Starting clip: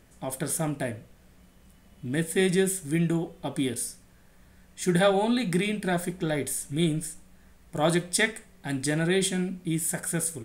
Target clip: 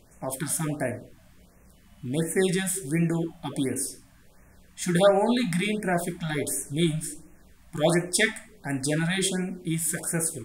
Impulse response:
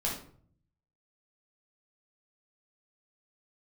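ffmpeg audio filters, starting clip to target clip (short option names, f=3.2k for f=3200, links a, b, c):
-filter_complex "[0:a]asplit=2[a][b];[b]lowshelf=f=240:t=q:w=1.5:g=-10.5[c];[1:a]atrim=start_sample=2205[d];[c][d]afir=irnorm=-1:irlink=0,volume=-13dB[e];[a][e]amix=inputs=2:normalize=0,afftfilt=real='re*(1-between(b*sr/1024,380*pow(4100/380,0.5+0.5*sin(2*PI*1.4*pts/sr))/1.41,380*pow(4100/380,0.5+0.5*sin(2*PI*1.4*pts/sr))*1.41))':imag='im*(1-between(b*sr/1024,380*pow(4100/380,0.5+0.5*sin(2*PI*1.4*pts/sr))/1.41,380*pow(4100/380,0.5+0.5*sin(2*PI*1.4*pts/sr))*1.41))':win_size=1024:overlap=0.75"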